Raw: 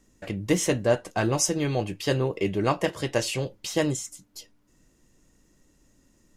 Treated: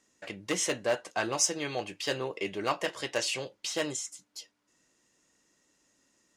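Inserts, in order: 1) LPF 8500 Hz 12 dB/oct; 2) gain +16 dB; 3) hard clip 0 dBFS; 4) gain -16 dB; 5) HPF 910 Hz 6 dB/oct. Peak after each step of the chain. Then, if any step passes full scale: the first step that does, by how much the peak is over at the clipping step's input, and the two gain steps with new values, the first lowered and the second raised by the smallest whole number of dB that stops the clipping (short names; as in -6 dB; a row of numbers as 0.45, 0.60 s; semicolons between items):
-9.5, +6.5, 0.0, -16.0, -14.0 dBFS; step 2, 6.5 dB; step 2 +9 dB, step 4 -9 dB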